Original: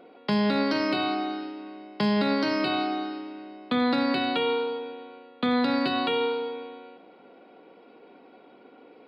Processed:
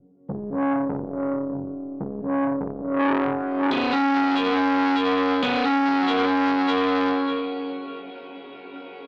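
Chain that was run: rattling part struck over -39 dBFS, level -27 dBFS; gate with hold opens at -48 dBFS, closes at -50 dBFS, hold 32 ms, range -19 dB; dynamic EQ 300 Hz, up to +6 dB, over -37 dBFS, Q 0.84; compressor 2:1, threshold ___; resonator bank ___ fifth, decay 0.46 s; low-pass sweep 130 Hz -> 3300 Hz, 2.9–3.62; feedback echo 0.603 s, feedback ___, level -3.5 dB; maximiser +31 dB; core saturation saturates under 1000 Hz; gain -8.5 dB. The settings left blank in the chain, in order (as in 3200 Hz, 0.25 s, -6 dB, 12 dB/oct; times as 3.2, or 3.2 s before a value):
-27 dBFS, F#2, 23%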